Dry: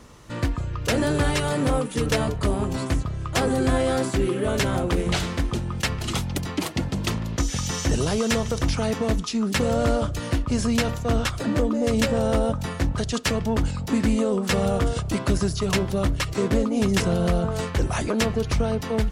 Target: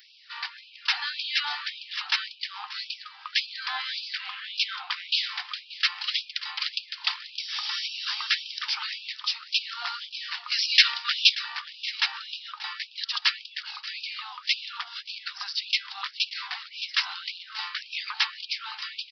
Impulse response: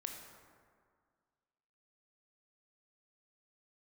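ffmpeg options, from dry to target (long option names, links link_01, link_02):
-filter_complex "[0:a]asettb=1/sr,asplit=3[link_01][link_02][link_03];[link_01]atrim=end=10.504[link_04];[link_02]atrim=start=10.5:end=11.35,asetpts=PTS-STARTPTS,afade=type=in:duration=0.004:curve=qsin,afade=type=out:start_time=0.846:duration=0.004:curve=qsin,tiltshelf=frequency=660:gain=-9.5[link_05];[link_03]atrim=start=11.346[link_06];[link_04][link_05]acrossfade=duration=0.004:curve1=hsin:curve2=qsin[link_07];[link_07][link_06]acrossfade=duration=0.004:curve1=qsin:curve2=hsin,asettb=1/sr,asplit=3[link_08][link_09][link_10];[link_08]atrim=end=14.814[link_11];[link_09]atrim=start=14.81:end=15.4,asetpts=PTS-STARTPTS,afade=type=in:duration=0.004:curve=qsin,afade=type=out:start_time=0.586:duration=0.004:curve=qsin,acompressor=threshold=-24dB:ratio=6[link_12];[link_10]atrim=start=15.396[link_13];[link_11][link_12]acrossfade=duration=0.004:curve1=hsin:curve2=qsin[link_14];[link_14][link_13]acrossfade=duration=0.004:curve1=qsin:curve2=hsin,aresample=11025,aresample=44100,crystalizer=i=6.5:c=0,asplit=2[link_15][link_16];[link_16]aecho=0:1:582:0.133[link_17];[link_15][link_17]amix=inputs=2:normalize=0,afftfilt=real='re*gte(b*sr/1024,710*pow(2400/710,0.5+0.5*sin(2*PI*1.8*pts/sr)))':imag='im*gte(b*sr/1024,710*pow(2400/710,0.5+0.5*sin(2*PI*1.8*pts/sr)))':win_size=1024:overlap=0.75,volume=-5.5dB"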